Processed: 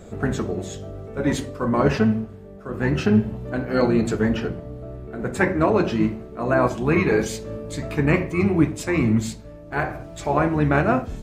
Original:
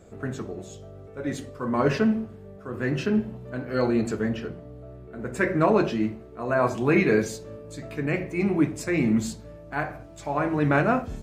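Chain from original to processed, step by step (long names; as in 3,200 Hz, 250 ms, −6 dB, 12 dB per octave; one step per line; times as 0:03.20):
speech leveller within 4 dB 0.5 s
pitch-shifted copies added −12 semitones −7 dB
level +4 dB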